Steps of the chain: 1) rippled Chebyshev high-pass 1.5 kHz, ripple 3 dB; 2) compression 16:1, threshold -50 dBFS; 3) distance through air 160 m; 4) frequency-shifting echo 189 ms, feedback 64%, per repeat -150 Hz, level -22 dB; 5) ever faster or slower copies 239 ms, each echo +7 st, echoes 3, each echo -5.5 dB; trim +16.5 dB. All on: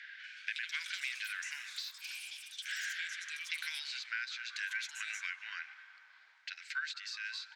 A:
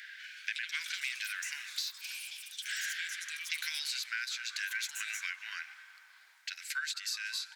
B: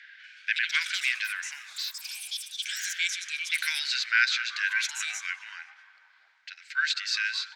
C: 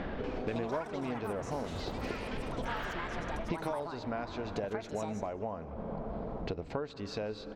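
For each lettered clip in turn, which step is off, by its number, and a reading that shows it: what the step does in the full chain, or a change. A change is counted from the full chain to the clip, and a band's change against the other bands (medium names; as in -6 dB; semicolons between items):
3, 8 kHz band +6.0 dB; 2, mean gain reduction 6.5 dB; 1, 1 kHz band +22.5 dB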